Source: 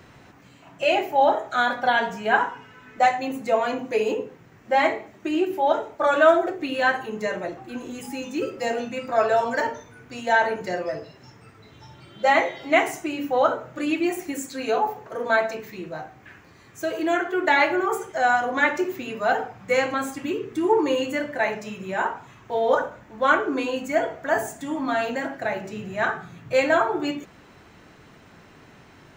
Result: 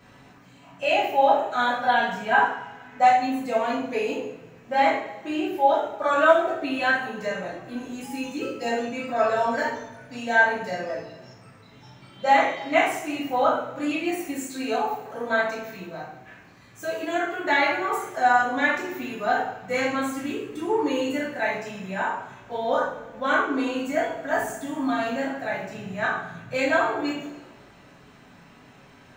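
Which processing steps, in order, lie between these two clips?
two-slope reverb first 0.52 s, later 1.8 s, from -18 dB, DRR -6.5 dB; gain -8 dB

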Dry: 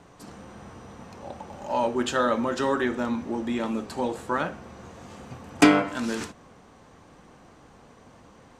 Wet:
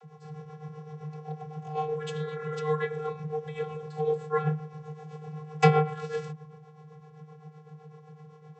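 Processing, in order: tremolo 7.8 Hz, depth 65%; spectral repair 2.08–2.55, 220–2100 Hz; vocoder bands 32, square 153 Hz

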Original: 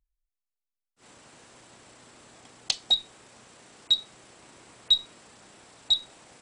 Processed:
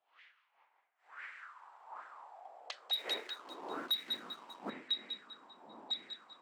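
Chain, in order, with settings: wind noise 300 Hz -34 dBFS; on a send: thin delay 0.197 s, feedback 61%, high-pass 1700 Hz, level -7.5 dB; on the sum: auto-wah 680–2100 Hz, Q 4.4, up, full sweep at -23.5 dBFS; 2.93–4.7 sample leveller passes 2; high-pass sweep 3100 Hz -> 230 Hz, 0.24–4.08; gain +1 dB

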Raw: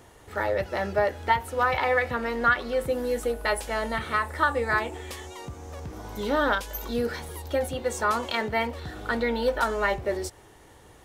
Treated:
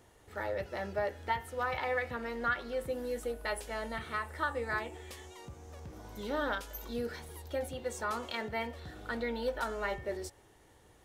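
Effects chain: bell 1100 Hz -2 dB; de-hum 138.9 Hz, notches 24; gain -9 dB

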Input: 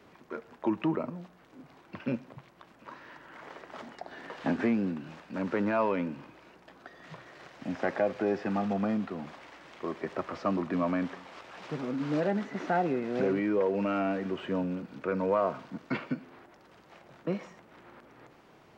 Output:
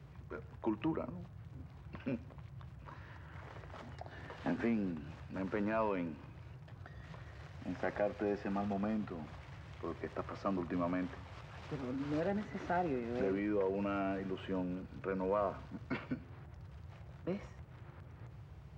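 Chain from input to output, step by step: band noise 60–150 Hz -45 dBFS; gain -7 dB

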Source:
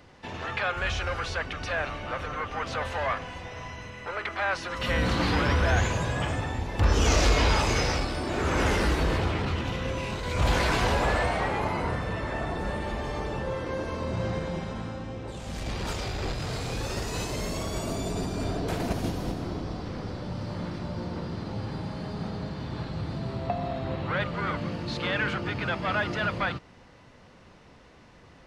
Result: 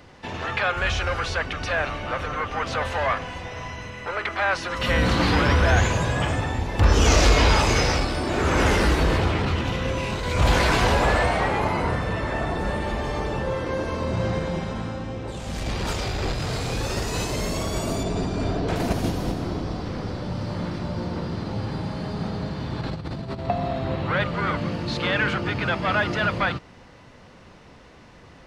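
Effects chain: 18.03–18.76 air absorption 76 m; 22.81–23.49 negative-ratio compressor -35 dBFS, ratio -0.5; gain +5 dB

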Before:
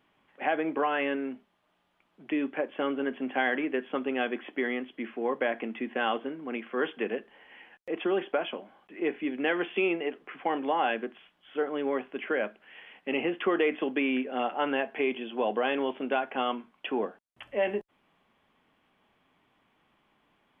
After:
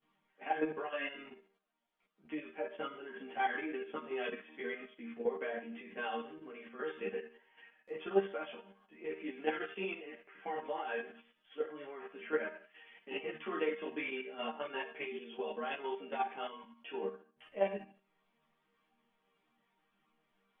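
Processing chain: resonator bank D#3 major, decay 0.47 s; level quantiser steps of 10 dB; ensemble effect; gain +15 dB

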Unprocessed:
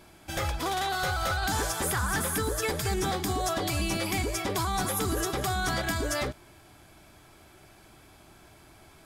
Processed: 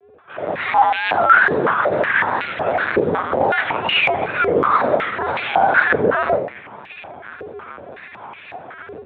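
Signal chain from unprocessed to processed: air absorption 69 m; sine folder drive 4 dB, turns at -21 dBFS; AGC gain up to 16 dB; shoebox room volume 160 m³, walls mixed, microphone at 2.9 m; LPC vocoder at 8 kHz pitch kept; in parallel at 0 dB: compressor, threshold -11 dBFS, peak gain reduction 17.5 dB; on the sum: wow and flutter 94 cents; frequency shift +81 Hz; stepped band-pass 5.4 Hz 450–2500 Hz; gain -10.5 dB

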